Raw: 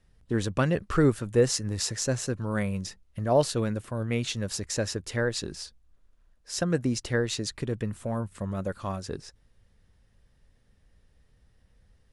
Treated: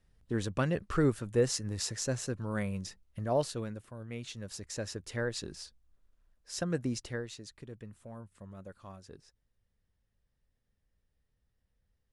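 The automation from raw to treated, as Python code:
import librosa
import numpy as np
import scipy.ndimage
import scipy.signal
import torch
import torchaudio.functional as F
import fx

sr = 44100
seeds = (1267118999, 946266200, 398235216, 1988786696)

y = fx.gain(x, sr, db=fx.line((3.21, -5.5), (3.99, -14.0), (5.22, -6.5), (6.96, -6.5), (7.38, -16.0)))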